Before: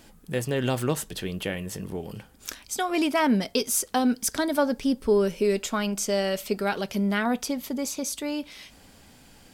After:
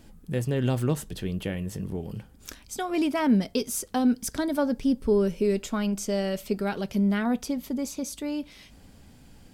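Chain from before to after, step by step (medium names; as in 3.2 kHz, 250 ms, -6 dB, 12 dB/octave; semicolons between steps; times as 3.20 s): bass shelf 320 Hz +11.5 dB; trim -6 dB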